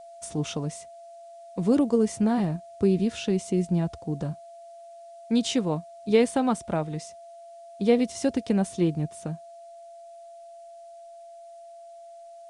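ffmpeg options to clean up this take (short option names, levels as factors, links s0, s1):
-af "bandreject=f=680:w=30,agate=range=0.0891:threshold=0.0126"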